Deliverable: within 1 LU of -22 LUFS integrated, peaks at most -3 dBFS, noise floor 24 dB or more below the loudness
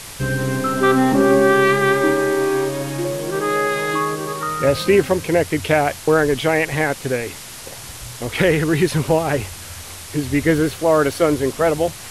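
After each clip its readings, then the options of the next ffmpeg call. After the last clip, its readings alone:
noise floor -35 dBFS; noise floor target -42 dBFS; loudness -18.0 LUFS; peak level -3.5 dBFS; loudness target -22.0 LUFS
-> -af "afftdn=nr=7:nf=-35"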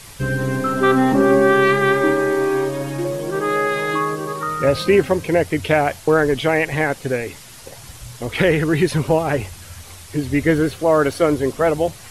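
noise floor -40 dBFS; noise floor target -43 dBFS
-> -af "afftdn=nr=6:nf=-40"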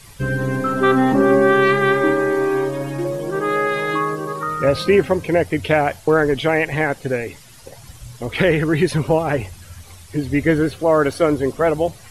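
noise floor -43 dBFS; loudness -18.5 LUFS; peak level -4.0 dBFS; loudness target -22.0 LUFS
-> -af "volume=0.668"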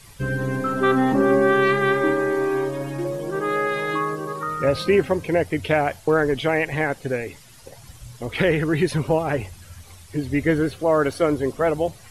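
loudness -22.0 LUFS; peak level -7.5 dBFS; noise floor -46 dBFS

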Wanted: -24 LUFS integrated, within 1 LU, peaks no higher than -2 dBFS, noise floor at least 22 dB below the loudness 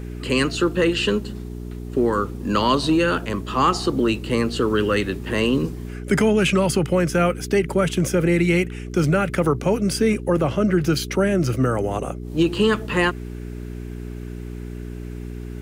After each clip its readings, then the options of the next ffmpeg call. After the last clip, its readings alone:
hum 60 Hz; highest harmonic 420 Hz; hum level -29 dBFS; loudness -21.0 LUFS; peak level -5.5 dBFS; loudness target -24.0 LUFS
-> -af "bandreject=f=60:t=h:w=4,bandreject=f=120:t=h:w=4,bandreject=f=180:t=h:w=4,bandreject=f=240:t=h:w=4,bandreject=f=300:t=h:w=4,bandreject=f=360:t=h:w=4,bandreject=f=420:t=h:w=4"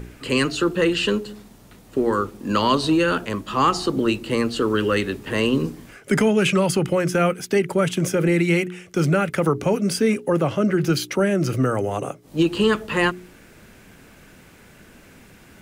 hum not found; loudness -21.5 LUFS; peak level -6.5 dBFS; loudness target -24.0 LUFS
-> -af "volume=0.75"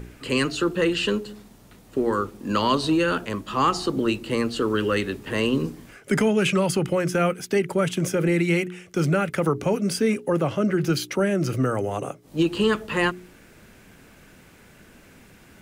loudness -24.0 LUFS; peak level -9.0 dBFS; noise floor -51 dBFS

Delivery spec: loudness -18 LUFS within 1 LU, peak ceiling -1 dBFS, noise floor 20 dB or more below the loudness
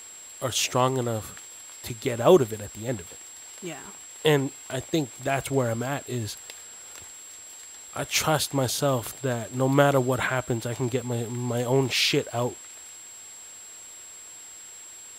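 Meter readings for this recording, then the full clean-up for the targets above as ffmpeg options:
steady tone 7.6 kHz; tone level -42 dBFS; loudness -26.0 LUFS; peak level -4.0 dBFS; loudness target -18.0 LUFS
-> -af "bandreject=f=7600:w=30"
-af "volume=2.51,alimiter=limit=0.891:level=0:latency=1"

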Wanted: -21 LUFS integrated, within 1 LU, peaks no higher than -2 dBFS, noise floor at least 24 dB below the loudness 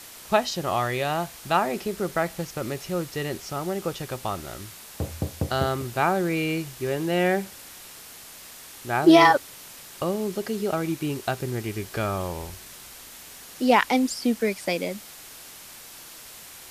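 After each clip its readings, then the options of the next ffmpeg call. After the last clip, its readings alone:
noise floor -44 dBFS; noise floor target -49 dBFS; loudness -25.0 LUFS; peak level -4.0 dBFS; loudness target -21.0 LUFS
-> -af "afftdn=nr=6:nf=-44"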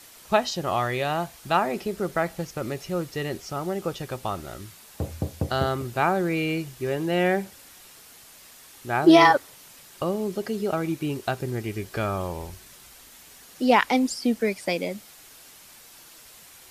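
noise floor -49 dBFS; noise floor target -50 dBFS
-> -af "afftdn=nr=6:nf=-49"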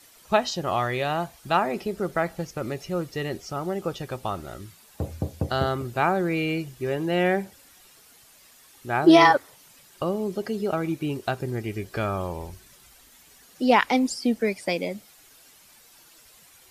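noise floor -54 dBFS; loudness -25.5 LUFS; peak level -4.5 dBFS; loudness target -21.0 LUFS
-> -af "volume=1.68,alimiter=limit=0.794:level=0:latency=1"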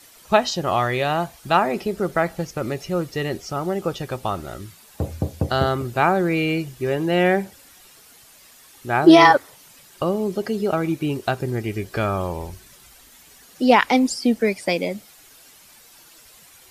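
loudness -21.0 LUFS; peak level -2.0 dBFS; noise floor -50 dBFS

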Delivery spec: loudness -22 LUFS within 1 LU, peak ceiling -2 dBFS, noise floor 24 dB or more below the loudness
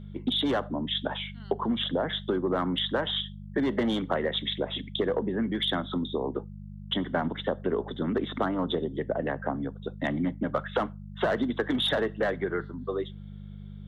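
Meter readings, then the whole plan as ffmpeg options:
hum 50 Hz; highest harmonic 200 Hz; hum level -40 dBFS; loudness -29.5 LUFS; peak level -14.0 dBFS; loudness target -22.0 LUFS
-> -af "bandreject=f=50:t=h:w=4,bandreject=f=100:t=h:w=4,bandreject=f=150:t=h:w=4,bandreject=f=200:t=h:w=4"
-af "volume=2.37"

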